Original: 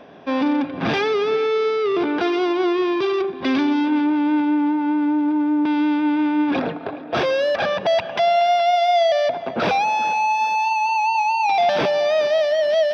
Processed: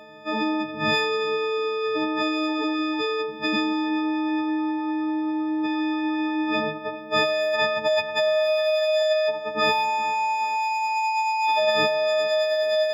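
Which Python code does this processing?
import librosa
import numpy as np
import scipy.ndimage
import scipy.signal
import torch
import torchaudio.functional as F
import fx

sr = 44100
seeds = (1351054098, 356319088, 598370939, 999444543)

y = fx.freq_snap(x, sr, grid_st=6)
y = fx.highpass(y, sr, hz=200.0, slope=6, at=(9.02, 9.69))
y = F.gain(torch.from_numpy(y), -5.5).numpy()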